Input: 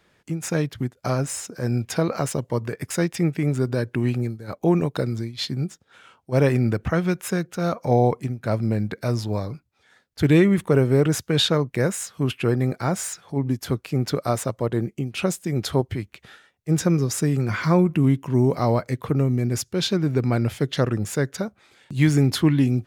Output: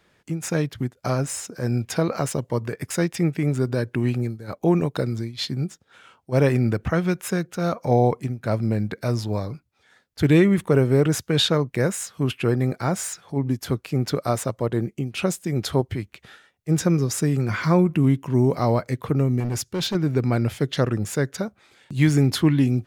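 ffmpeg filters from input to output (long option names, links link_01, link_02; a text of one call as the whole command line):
ffmpeg -i in.wav -filter_complex "[0:a]asettb=1/sr,asplit=3[link_01][link_02][link_03];[link_01]atrim=end=19.404[link_04];[link_02]atrim=start=19.4:end=19.95,asetpts=PTS-STARTPTS,afade=type=in:duration=0.004:curve=qsin,afade=type=out:start_time=0.546:duration=0.004:curve=qsin,asoftclip=type=hard:threshold=-21.5dB[link_05];[link_03]atrim=start=19.946[link_06];[link_04][link_05]acrossfade=duration=0.004:curve1=hsin:curve2=qsin[link_07];[link_07][link_06]acrossfade=duration=0.004:curve1=qsin:curve2=hsin" out.wav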